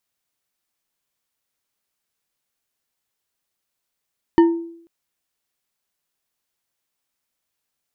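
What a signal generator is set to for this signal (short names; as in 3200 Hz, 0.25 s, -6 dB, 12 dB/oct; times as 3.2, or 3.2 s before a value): glass hit bar, length 0.49 s, lowest mode 335 Hz, decay 0.66 s, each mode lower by 9 dB, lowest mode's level -6.5 dB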